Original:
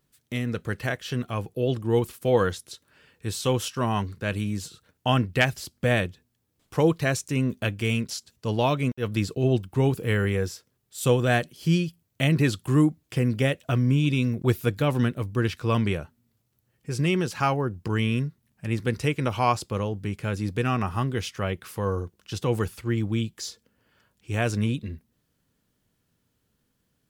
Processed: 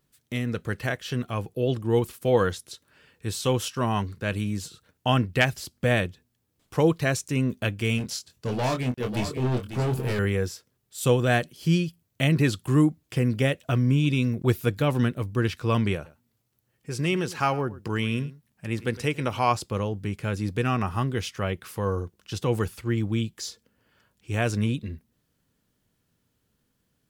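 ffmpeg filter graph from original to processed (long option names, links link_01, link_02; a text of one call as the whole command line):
ffmpeg -i in.wav -filter_complex "[0:a]asettb=1/sr,asplit=3[link_01][link_02][link_03];[link_01]atrim=end=7.984[link_04];[link_02]atrim=start=7.98:end=10.19,asetpts=PTS-STARTPTS,afade=type=in:duration=0.004:curve=qsin,afade=type=out:start_time=2.206:duration=0.004:curve=qsin,volume=23.5dB,asoftclip=hard,volume=-23.5dB,asplit=2[link_05][link_06];[link_06]adelay=24,volume=-6dB[link_07];[link_05][link_07]amix=inputs=2:normalize=0,atrim=end_sample=97461,aecho=1:1:545:0.335,atrim=end_sample=97461[link_08];[link_03]atrim=start=10.186[link_09];[link_04][link_08]acrossfade=duration=0.004:curve1=hsin:curve2=qsin[link_10];[link_10][link_09]acrossfade=duration=0.004:curve1=qsin:curve2=hsin,asettb=1/sr,asplit=3[link_11][link_12][link_13];[link_11]atrim=end=15.954[link_14];[link_12]atrim=start=15.95:end=19.51,asetpts=PTS-STARTPTS,afade=type=in:duration=0.004:curve=qsin,afade=type=out:start_time=3.556:duration=0.004:curve=qsin,lowshelf=frequency=190:gain=-5,aecho=1:1:107:0.126,atrim=end_sample=156996[link_15];[link_13]atrim=start=19.506[link_16];[link_14][link_15]acrossfade=duration=0.004:curve1=hsin:curve2=qsin[link_17];[link_17][link_16]acrossfade=duration=0.004:curve1=qsin:curve2=hsin" out.wav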